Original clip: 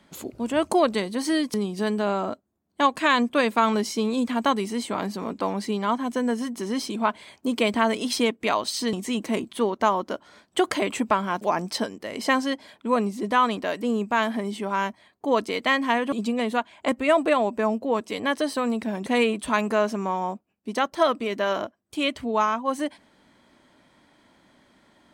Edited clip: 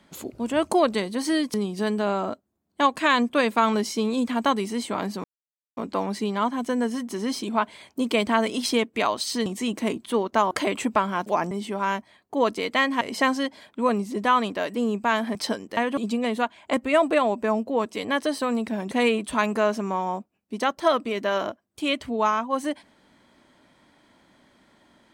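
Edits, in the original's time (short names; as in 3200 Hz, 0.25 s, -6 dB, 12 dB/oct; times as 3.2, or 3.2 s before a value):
5.24 insert silence 0.53 s
9.98–10.66 cut
11.66–12.08 swap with 14.42–15.92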